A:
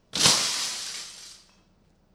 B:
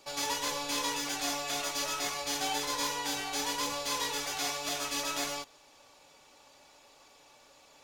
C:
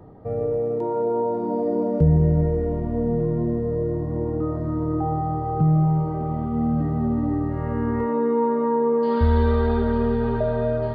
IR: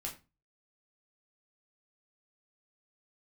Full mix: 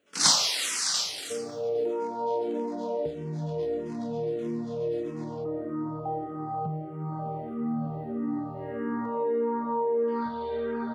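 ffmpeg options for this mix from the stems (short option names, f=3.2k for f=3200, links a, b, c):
-filter_complex "[0:a]dynaudnorm=f=120:g=7:m=12dB,volume=-3dB,asplit=2[a][b];[b]volume=-4.5dB[c];[1:a]acrusher=bits=5:dc=4:mix=0:aa=0.000001,lowpass=4.7k,volume=-14dB[d];[2:a]acompressor=threshold=-20dB:ratio=5,adelay=1050,volume=-3.5dB,asplit=2[e][f];[f]volume=-5.5dB[g];[3:a]atrim=start_sample=2205[h];[c][g]amix=inputs=2:normalize=0[i];[i][h]afir=irnorm=-1:irlink=0[j];[a][d][e][j]amix=inputs=4:normalize=0,highpass=260,asplit=2[k][l];[l]afreqshift=-1.6[m];[k][m]amix=inputs=2:normalize=1"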